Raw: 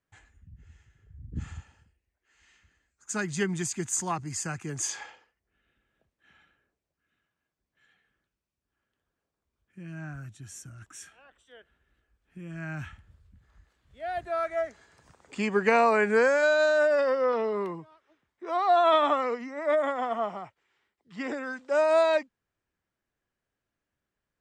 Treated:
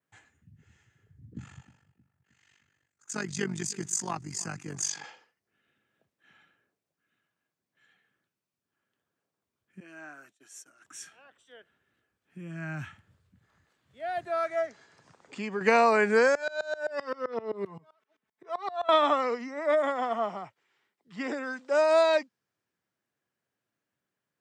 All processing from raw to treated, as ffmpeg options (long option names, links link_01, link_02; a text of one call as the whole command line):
ffmpeg -i in.wav -filter_complex "[0:a]asettb=1/sr,asplit=3[link_01][link_02][link_03];[link_01]atrim=end=1.334[link_04];[link_02]atrim=start=1.33:end=5.04,asetpts=PTS-STARTPTS,afade=type=in:duration=0.004:curve=qsin,afade=type=out:start_time=3.706:duration=0.004:curve=qsin,tremolo=f=48:d=0.857,asplit=2[link_05][link_06];[link_06]adelay=312,lowpass=frequency=1600:poles=1,volume=-19dB,asplit=2[link_07][link_08];[link_08]adelay=312,lowpass=frequency=1600:poles=1,volume=0.49,asplit=2[link_09][link_10];[link_10]adelay=312,lowpass=frequency=1600:poles=1,volume=0.49,asplit=2[link_11][link_12];[link_12]adelay=312,lowpass=frequency=1600:poles=1,volume=0.49[link_13];[link_05][link_07][link_09][link_11][link_13]amix=inputs=5:normalize=0,atrim=end_sample=163611[link_14];[link_03]atrim=start=5.036[link_15];[link_04][link_14]acrossfade=duration=0.004:curve1=hsin:curve2=qsin[link_16];[link_16][link_15]acrossfade=duration=0.004:curve1=qsin:curve2=hsin,asettb=1/sr,asplit=3[link_17][link_18][link_19];[link_17]atrim=end=9.804[link_20];[link_18]atrim=start=9.8:end=10.85,asetpts=PTS-STARTPTS,afade=type=in:duration=0.004:curve=qsin,afade=type=out:start_time=1.046:duration=0.004:curve=qsin,agate=range=-33dB:threshold=-42dB:ratio=3:release=100:detection=peak,highpass=frequency=340:width=0.5412,highpass=frequency=340:width=1.3066[link_21];[link_19]atrim=start=10.846[link_22];[link_20][link_21]acrossfade=duration=0.004:curve1=hsin:curve2=qsin[link_23];[link_23][link_22]acrossfade=duration=0.004:curve1=qsin:curve2=hsin,asettb=1/sr,asplit=3[link_24][link_25][link_26];[link_24]atrim=end=14.664[link_27];[link_25]atrim=start=14.66:end=15.61,asetpts=PTS-STARTPTS,afade=type=in:duration=0.004:curve=qsin,afade=type=out:start_time=0.946:duration=0.004:curve=qsin,lowpass=7000,acompressor=threshold=-42dB:ratio=1.5:attack=3.2:release=140:knee=1:detection=peak[link_28];[link_26]atrim=start=15.606[link_29];[link_27][link_28]acrossfade=duration=0.004:curve1=hsin:curve2=qsin[link_30];[link_30][link_29]acrossfade=duration=0.004:curve1=qsin:curve2=hsin,asettb=1/sr,asplit=3[link_31][link_32][link_33];[link_31]atrim=end=16.354[link_34];[link_32]atrim=start=16.35:end=18.89,asetpts=PTS-STARTPTS,afade=type=in:duration=0.004:curve=qsin,afade=type=out:start_time=2.536:duration=0.004:curve=qsin,aecho=1:1:4.6:0.71,atrim=end_sample=112014,acompressor=threshold=-23dB:ratio=6:attack=3.2:release=140:knee=1:detection=peak,aeval=exprs='val(0)*pow(10,-23*if(lt(mod(-7.7*n/s,1),2*abs(-7.7)/1000),1-mod(-7.7*n/s,1)/(2*abs(-7.7)/1000),(mod(-7.7*n/s,1)-2*abs(-7.7)/1000)/(1-2*abs(-7.7)/1000))/20)':channel_layout=same[link_35];[link_33]atrim=start=18.886[link_36];[link_34][link_35]acrossfade=duration=0.004:curve1=hsin:curve2=qsin[link_37];[link_37][link_36]acrossfade=duration=0.004:curve1=qsin:curve2=hsin,highpass=frequency=110:width=0.5412,highpass=frequency=110:width=1.3066,adynamicequalizer=threshold=0.00282:dfrequency=5100:dqfactor=1.9:tfrequency=5100:tqfactor=1.9:attack=5:release=100:ratio=0.375:range=3.5:mode=boostabove:tftype=bell" out.wav